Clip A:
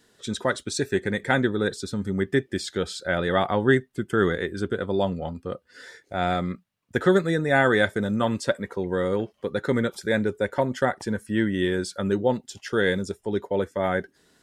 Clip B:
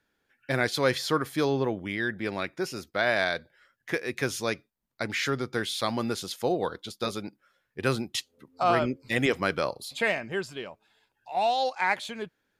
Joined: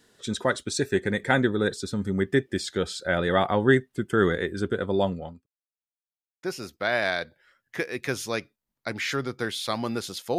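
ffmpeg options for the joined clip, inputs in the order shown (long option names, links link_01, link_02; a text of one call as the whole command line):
ffmpeg -i cue0.wav -i cue1.wav -filter_complex "[0:a]apad=whole_dur=10.38,atrim=end=10.38,asplit=2[link_01][link_02];[link_01]atrim=end=5.46,asetpts=PTS-STARTPTS,afade=type=out:start_time=5.04:duration=0.42[link_03];[link_02]atrim=start=5.46:end=6.43,asetpts=PTS-STARTPTS,volume=0[link_04];[1:a]atrim=start=2.57:end=6.52,asetpts=PTS-STARTPTS,afade=type=in:duration=0.004:curve=hsin[link_05];[link_03][link_04][link_05]concat=n=3:v=0:a=1" out.wav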